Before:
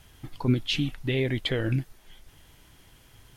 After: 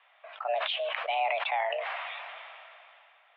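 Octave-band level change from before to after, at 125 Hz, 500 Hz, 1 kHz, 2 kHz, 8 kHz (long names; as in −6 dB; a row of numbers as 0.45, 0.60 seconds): below −40 dB, 0.0 dB, +16.5 dB, +2.5 dB, below −30 dB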